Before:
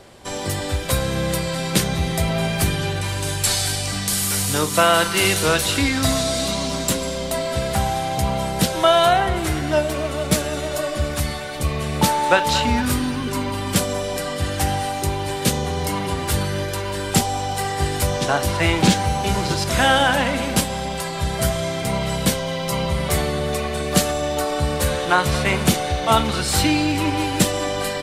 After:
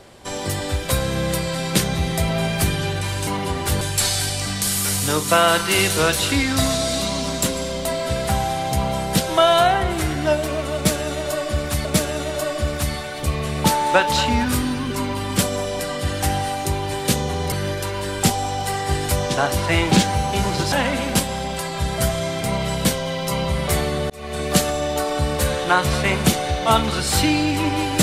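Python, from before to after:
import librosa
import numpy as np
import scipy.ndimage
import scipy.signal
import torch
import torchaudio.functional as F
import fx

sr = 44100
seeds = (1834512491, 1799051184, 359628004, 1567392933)

y = fx.edit(x, sr, fx.repeat(start_s=10.22, length_s=1.09, count=2),
    fx.move(start_s=15.89, length_s=0.54, to_s=3.27),
    fx.cut(start_s=19.63, length_s=0.5),
    fx.fade_in_span(start_s=23.51, length_s=0.32), tone=tone)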